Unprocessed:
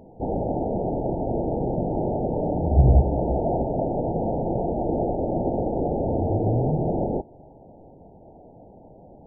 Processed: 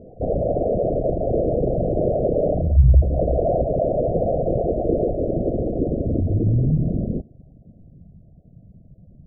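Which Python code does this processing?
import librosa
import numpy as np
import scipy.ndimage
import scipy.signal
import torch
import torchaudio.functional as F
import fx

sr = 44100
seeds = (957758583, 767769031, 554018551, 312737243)

y = fx.envelope_sharpen(x, sr, power=3.0)
y = fx.filter_sweep_lowpass(y, sr, from_hz=510.0, to_hz=170.0, start_s=4.34, end_s=8.28, q=1.7)
y = y * 10.0 ** (3.0 / 20.0)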